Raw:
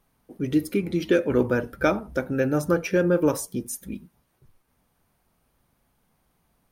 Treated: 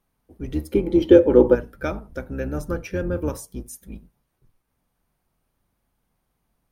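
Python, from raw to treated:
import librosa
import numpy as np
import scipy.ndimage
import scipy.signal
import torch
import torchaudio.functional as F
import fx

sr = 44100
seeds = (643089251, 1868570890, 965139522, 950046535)

y = fx.octave_divider(x, sr, octaves=2, level_db=1.0)
y = fx.small_body(y, sr, hz=(350.0, 500.0, 830.0, 3100.0), ring_ms=25, db=fx.line((0.71, 14.0), (1.54, 16.0)), at=(0.71, 1.54), fade=0.02)
y = F.gain(torch.from_numpy(y), -6.0).numpy()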